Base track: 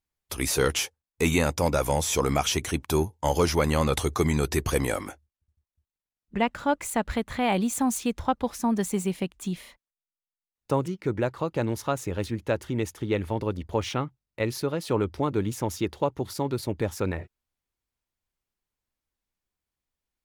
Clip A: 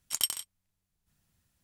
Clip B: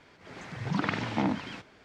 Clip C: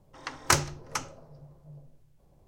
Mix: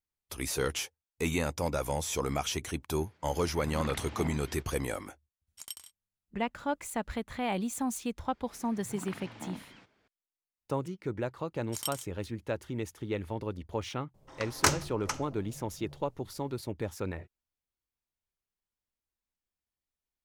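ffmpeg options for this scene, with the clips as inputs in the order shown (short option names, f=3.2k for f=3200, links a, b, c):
-filter_complex "[2:a]asplit=2[a][b];[1:a]asplit=2[c][d];[0:a]volume=-7.5dB[e];[a]atrim=end=1.84,asetpts=PTS-STARTPTS,volume=-11dB,afade=t=in:d=0.004:c=hsin,afade=t=out:st=1.836:d=0.004:c=hsin,adelay=3010[f];[c]atrim=end=1.63,asetpts=PTS-STARTPTS,volume=-14dB,afade=t=in:d=0.004:c=hsin,afade=t=out:st=1.626:d=0.004:c=hsin,adelay=5470[g];[b]atrim=end=1.84,asetpts=PTS-STARTPTS,volume=-14.5dB,afade=t=in:d=0.004:c=hsin,afade=t=out:st=1.836:d=0.004:c=hsin,adelay=8240[h];[d]atrim=end=1.63,asetpts=PTS-STARTPTS,volume=-7.5dB,afade=t=in:d=0.004:c=hsin,afade=t=out:st=1.626:d=0.004:c=hsin,adelay=512442S[i];[3:a]atrim=end=2.47,asetpts=PTS-STARTPTS,volume=-2dB,afade=t=in:d=0.004:c=hsin,afade=t=out:st=2.466:d=0.004:c=hsin,adelay=14140[j];[e][f][g][h][i][j]amix=inputs=6:normalize=0"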